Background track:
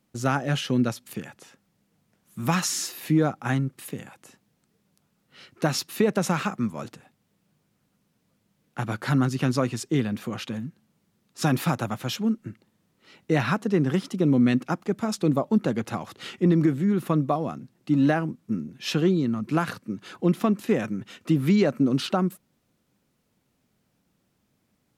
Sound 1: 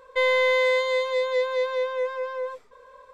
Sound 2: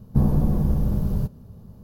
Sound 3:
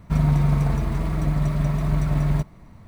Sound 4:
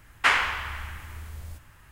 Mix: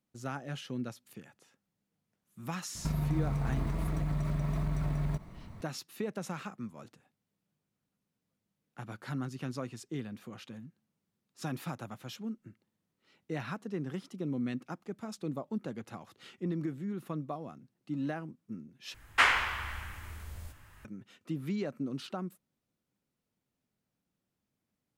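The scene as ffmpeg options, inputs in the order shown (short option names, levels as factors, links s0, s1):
-filter_complex "[0:a]volume=0.188[s0];[3:a]acompressor=threshold=0.0501:ratio=6:attack=3.2:release=140:knee=1:detection=peak[s1];[4:a]asplit=2[s2][s3];[s3]adelay=20,volume=0.251[s4];[s2][s4]amix=inputs=2:normalize=0[s5];[s0]asplit=2[s6][s7];[s6]atrim=end=18.944[s8];[s5]atrim=end=1.91,asetpts=PTS-STARTPTS,volume=0.668[s9];[s7]atrim=start=20.846[s10];[s1]atrim=end=2.87,asetpts=PTS-STARTPTS,volume=0.794,afade=t=in:d=0.004:c=hsin,afade=t=out:st=2.866:d=0.004:c=hsin,adelay=2750[s11];[s8][s9]acrossfade=d=0.004:c1=hsin:c2=hsin[s12];[s12][s10]acrossfade=d=0.004:c1=hsin:c2=hsin[s13];[s13][s11]amix=inputs=2:normalize=0"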